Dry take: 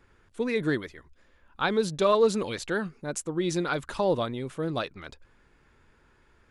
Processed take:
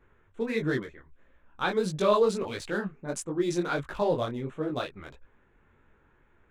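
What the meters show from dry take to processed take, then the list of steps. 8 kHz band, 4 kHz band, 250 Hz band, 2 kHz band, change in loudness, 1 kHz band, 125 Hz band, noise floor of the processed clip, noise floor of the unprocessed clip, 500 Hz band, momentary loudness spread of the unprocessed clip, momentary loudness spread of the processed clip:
-3.0 dB, -3.0 dB, -1.0 dB, -1.5 dB, -1.5 dB, -1.0 dB, -1.0 dB, -65 dBFS, -63 dBFS, -1.0 dB, 12 LU, 11 LU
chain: Wiener smoothing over 9 samples; detuned doubles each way 53 cents; gain +2.5 dB

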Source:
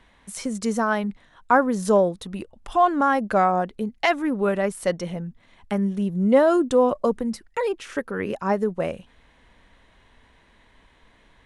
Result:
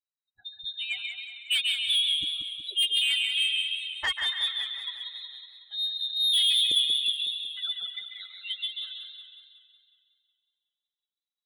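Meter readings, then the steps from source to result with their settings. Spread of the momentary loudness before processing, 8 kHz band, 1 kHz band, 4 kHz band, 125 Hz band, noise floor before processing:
13 LU, 0.0 dB, -27.5 dB, +19.0 dB, under -30 dB, -58 dBFS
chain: per-bin expansion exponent 3; inverted band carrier 3900 Hz; on a send: thin delay 0.138 s, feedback 49%, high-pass 1600 Hz, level -5 dB; on the sum: soft clip -20.5 dBFS, distortion -10 dB; warbling echo 0.184 s, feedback 56%, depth 63 cents, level -8 dB

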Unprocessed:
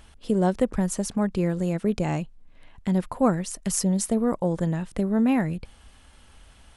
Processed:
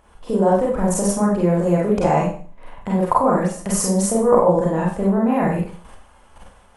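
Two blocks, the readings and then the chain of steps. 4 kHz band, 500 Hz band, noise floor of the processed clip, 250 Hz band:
+2.5 dB, +10.0 dB, -50 dBFS, +4.0 dB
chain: level quantiser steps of 16 dB; graphic EQ 500/1000/4000 Hz +7/+10/-6 dB; Schroeder reverb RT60 0.43 s, combs from 31 ms, DRR -4.5 dB; gain +6 dB

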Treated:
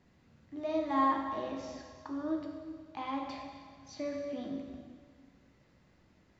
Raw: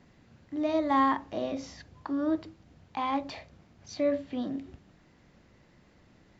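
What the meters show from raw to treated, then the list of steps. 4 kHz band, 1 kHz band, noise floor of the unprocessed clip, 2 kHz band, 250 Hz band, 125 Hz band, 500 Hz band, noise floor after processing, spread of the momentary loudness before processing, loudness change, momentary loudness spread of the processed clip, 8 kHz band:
-5.5 dB, -4.0 dB, -61 dBFS, -6.0 dB, -5.5 dB, -5.0 dB, -5.5 dB, -66 dBFS, 20 LU, -5.5 dB, 19 LU, n/a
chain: plate-style reverb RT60 1.8 s, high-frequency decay 0.95×, DRR 1 dB; gain -8 dB

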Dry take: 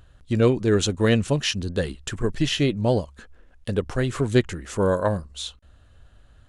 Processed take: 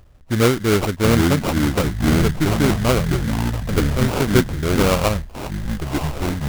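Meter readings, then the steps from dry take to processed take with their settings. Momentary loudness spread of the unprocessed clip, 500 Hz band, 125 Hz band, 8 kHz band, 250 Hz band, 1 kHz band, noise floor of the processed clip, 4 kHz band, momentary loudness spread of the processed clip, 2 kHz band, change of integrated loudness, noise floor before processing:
10 LU, +2.5 dB, +6.0 dB, +5.5 dB, +6.0 dB, +8.5 dB, -41 dBFS, +2.0 dB, 8 LU, +6.5 dB, +4.5 dB, -53 dBFS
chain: echoes that change speed 0.602 s, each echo -6 st, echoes 3; sample-rate reducer 1800 Hz, jitter 20%; gain +2.5 dB

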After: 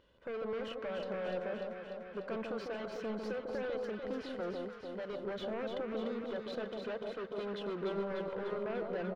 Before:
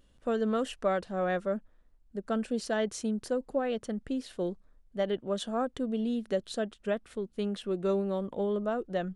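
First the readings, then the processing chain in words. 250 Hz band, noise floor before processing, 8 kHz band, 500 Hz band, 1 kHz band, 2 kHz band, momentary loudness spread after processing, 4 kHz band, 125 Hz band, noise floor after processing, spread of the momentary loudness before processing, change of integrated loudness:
-9.5 dB, -63 dBFS, under -15 dB, -6.0 dB, -7.5 dB, -4.0 dB, 4 LU, -6.0 dB, -8.5 dB, -49 dBFS, 6 LU, -7.0 dB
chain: tracing distortion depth 0.034 ms; HPF 340 Hz 6 dB/oct; high shelf 9200 Hz +11.5 dB; comb 2 ms, depth 46%; limiter -31 dBFS, peak gain reduction 13.5 dB; wavefolder -35.5 dBFS; tremolo 0.89 Hz, depth 39%; hard clip -40 dBFS, distortion -16 dB; air absorption 280 m; echo with dull and thin repeats by turns 0.148 s, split 1100 Hz, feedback 82%, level -3 dB; gain +4.5 dB

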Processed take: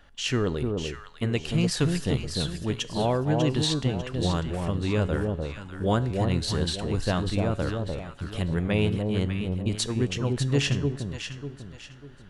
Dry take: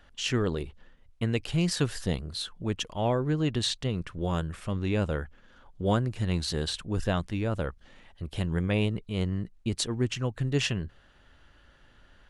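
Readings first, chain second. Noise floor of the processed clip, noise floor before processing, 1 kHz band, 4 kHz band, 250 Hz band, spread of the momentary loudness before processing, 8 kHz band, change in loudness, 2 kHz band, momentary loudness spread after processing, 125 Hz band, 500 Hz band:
-47 dBFS, -59 dBFS, +3.5 dB, +2.5 dB, +3.5 dB, 7 LU, +2.5 dB, +2.5 dB, +2.5 dB, 10 LU, +3.5 dB, +3.5 dB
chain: resonator 140 Hz, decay 0.71 s, harmonics all, mix 50%; echo with dull and thin repeats by turns 0.298 s, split 1000 Hz, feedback 58%, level -3 dB; gain +7 dB

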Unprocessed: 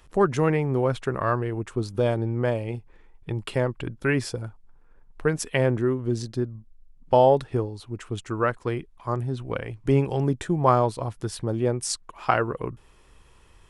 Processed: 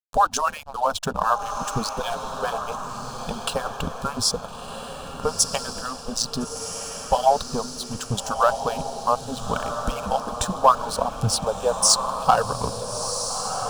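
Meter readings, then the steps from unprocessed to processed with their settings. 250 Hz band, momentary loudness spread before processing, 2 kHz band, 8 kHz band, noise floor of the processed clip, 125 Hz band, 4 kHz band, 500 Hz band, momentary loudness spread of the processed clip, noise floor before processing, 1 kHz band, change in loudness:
-5.5 dB, 12 LU, -1.0 dB, +13.5 dB, -37 dBFS, -7.0 dB, +12.5 dB, -2.0 dB, 12 LU, -54 dBFS, +6.5 dB, +1.5 dB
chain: median-filter separation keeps percussive; expander -54 dBFS; spectral gain 3.81–5.44, 1400–3100 Hz -17 dB; dynamic EQ 5400 Hz, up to +6 dB, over -52 dBFS, Q 1.2; in parallel at +2.5 dB: compressor, threshold -34 dBFS, peak gain reduction 17.5 dB; on the sum: sample leveller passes 2; backlash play -34 dBFS; fixed phaser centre 840 Hz, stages 4; on a send: diffused feedback echo 1.37 s, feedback 50%, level -7 dB

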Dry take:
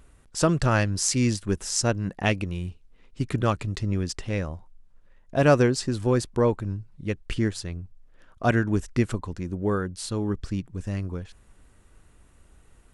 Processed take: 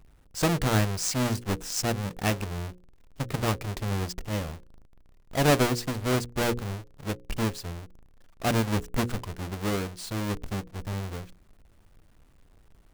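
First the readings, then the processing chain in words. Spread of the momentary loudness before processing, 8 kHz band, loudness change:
12 LU, -3.0 dB, -3.0 dB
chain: half-waves squared off; notches 60/120/180/240/300/360/420/480/540 Hz; gain -7 dB

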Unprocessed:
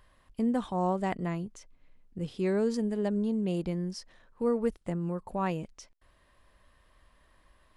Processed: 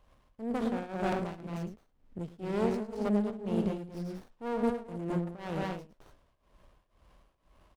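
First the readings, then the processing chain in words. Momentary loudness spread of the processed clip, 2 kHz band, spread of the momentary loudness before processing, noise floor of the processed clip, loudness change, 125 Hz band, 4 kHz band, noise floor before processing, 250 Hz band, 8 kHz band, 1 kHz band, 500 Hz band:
11 LU, 0.0 dB, 11 LU, -73 dBFS, -3.0 dB, -2.5 dB, -2.5 dB, -66 dBFS, -2.0 dB, n/a, -2.5 dB, -2.5 dB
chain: one diode to ground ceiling -32 dBFS; loudspeakers at several distances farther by 37 m -9 dB, 75 m -4 dB, 95 m -7 dB; tremolo triangle 2 Hz, depth 90%; running maximum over 17 samples; gain +2.5 dB

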